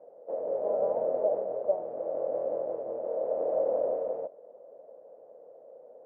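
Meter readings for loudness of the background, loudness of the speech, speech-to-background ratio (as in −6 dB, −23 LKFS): −32.0 LKFS, −34.5 LKFS, −2.5 dB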